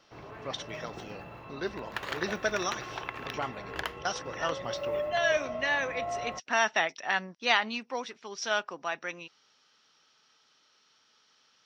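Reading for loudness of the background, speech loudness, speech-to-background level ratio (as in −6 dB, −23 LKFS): −38.0 LKFS, −32.0 LKFS, 6.0 dB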